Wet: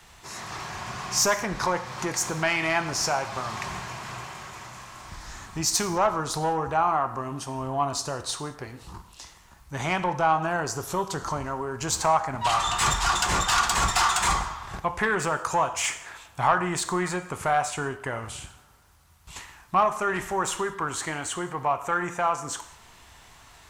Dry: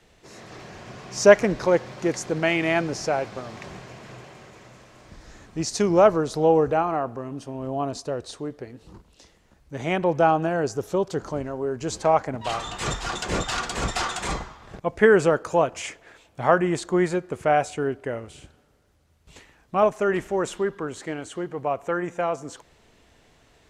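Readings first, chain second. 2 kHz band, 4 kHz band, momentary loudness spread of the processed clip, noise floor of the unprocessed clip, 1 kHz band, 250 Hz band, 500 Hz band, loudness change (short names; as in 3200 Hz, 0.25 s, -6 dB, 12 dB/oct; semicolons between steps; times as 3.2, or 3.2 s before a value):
+0.5 dB, +5.0 dB, 18 LU, -59 dBFS, +2.0 dB, -6.5 dB, -8.5 dB, -2.0 dB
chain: self-modulated delay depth 0.061 ms; compressor 2:1, threshold -29 dBFS, peak gain reduction 12 dB; high shelf 7000 Hz +11 dB; non-linear reverb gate 0.23 s falling, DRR 9 dB; soft clip -16 dBFS, distortion -22 dB; graphic EQ 250/500/1000 Hz -6/-10/+9 dB; gain +5 dB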